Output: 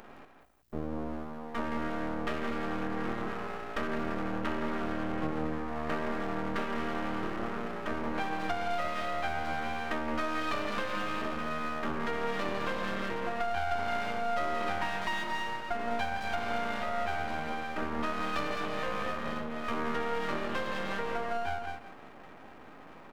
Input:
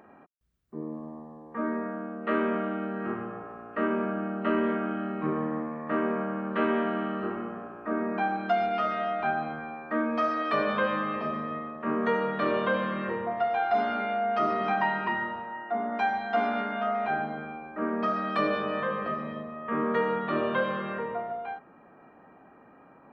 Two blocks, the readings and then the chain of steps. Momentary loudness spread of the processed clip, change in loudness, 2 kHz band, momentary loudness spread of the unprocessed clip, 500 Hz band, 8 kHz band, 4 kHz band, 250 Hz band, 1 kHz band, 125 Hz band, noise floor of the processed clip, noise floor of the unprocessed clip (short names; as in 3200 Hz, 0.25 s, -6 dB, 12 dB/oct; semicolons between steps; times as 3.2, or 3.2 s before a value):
5 LU, -5.0 dB, -2.5 dB, 10 LU, -6.0 dB, n/a, +2.5 dB, -5.5 dB, -5.0 dB, -2.0 dB, -50 dBFS, -55 dBFS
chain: high shelf 3500 Hz +8.5 dB; speakerphone echo 0.2 s, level -8 dB; compressor 6:1, threshold -34 dBFS, peak gain reduction 13.5 dB; echo 0.167 s -10 dB; half-wave rectifier; gain +6.5 dB